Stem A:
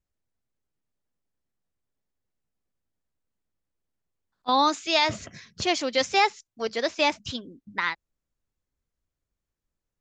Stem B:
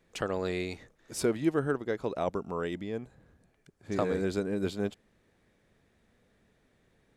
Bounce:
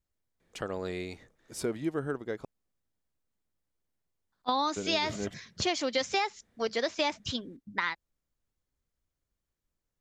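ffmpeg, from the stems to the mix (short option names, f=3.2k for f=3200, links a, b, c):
-filter_complex "[0:a]volume=-0.5dB[a];[1:a]adelay=400,volume=-3.5dB,asplit=3[b][c][d];[b]atrim=end=2.45,asetpts=PTS-STARTPTS,afade=t=out:st=2.446:d=0.004:c=hsin[e];[c]atrim=start=2.45:end=4.76,asetpts=PTS-STARTPTS,volume=0[f];[d]atrim=start=4.76,asetpts=PTS-STARTPTS,afade=t=in:d=0.004:c=hsin[g];[e][f][g]concat=n=3:v=0:a=1[h];[a][h]amix=inputs=2:normalize=0,bandreject=f=2.6k:w=28,acompressor=threshold=-25dB:ratio=10"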